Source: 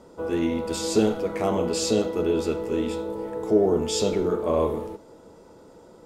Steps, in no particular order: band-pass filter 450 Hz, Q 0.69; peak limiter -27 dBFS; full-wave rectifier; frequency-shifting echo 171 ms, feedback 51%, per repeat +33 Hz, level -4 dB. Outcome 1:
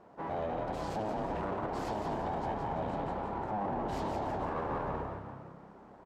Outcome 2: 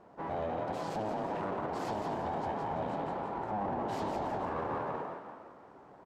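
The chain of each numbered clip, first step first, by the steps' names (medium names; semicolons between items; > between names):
full-wave rectifier > frequency-shifting echo > band-pass filter > peak limiter; full-wave rectifier > band-pass filter > frequency-shifting echo > peak limiter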